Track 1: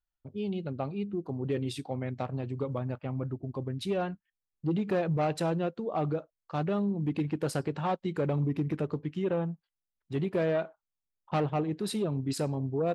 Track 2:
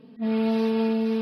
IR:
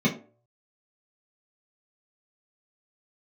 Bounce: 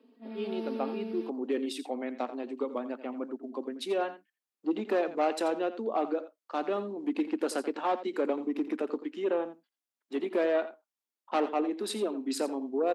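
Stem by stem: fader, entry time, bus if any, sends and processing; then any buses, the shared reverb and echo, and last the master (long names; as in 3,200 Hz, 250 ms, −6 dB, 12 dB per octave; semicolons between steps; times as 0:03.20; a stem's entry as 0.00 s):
+2.0 dB, 0.00 s, no send, echo send −13.5 dB, pitch vibrato 2.5 Hz 28 cents
−10.0 dB, 0.00 s, no send, echo send −4.5 dB, automatic ducking −9 dB, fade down 0.40 s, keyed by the first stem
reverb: not used
echo: single-tap delay 85 ms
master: Chebyshev high-pass filter 230 Hz, order 6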